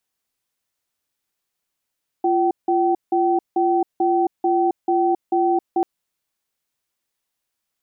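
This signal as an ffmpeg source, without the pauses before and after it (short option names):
-f lavfi -i "aevalsrc='0.126*(sin(2*PI*346*t)+sin(2*PI*767*t))*clip(min(mod(t,0.44),0.27-mod(t,0.44))/0.005,0,1)':d=3.59:s=44100"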